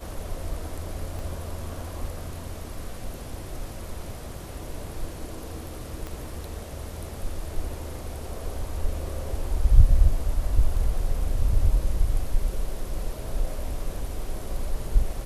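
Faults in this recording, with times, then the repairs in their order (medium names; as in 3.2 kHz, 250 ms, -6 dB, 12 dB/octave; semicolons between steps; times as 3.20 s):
1.19 s: pop
6.07 s: pop -21 dBFS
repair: de-click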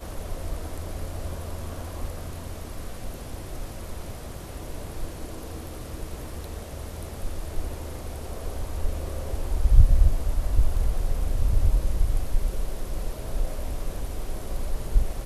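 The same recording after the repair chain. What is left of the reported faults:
1.19 s: pop
6.07 s: pop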